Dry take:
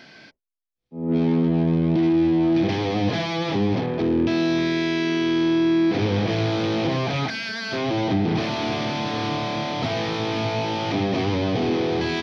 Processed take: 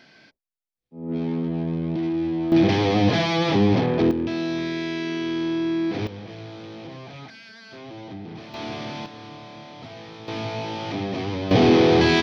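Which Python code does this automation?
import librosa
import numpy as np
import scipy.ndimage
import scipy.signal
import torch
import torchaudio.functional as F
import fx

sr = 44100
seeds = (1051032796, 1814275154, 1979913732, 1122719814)

y = fx.gain(x, sr, db=fx.steps((0.0, -6.0), (2.52, 3.5), (4.11, -5.0), (6.07, -15.5), (8.54, -7.0), (9.06, -15.0), (10.28, -5.0), (11.51, 7.0)))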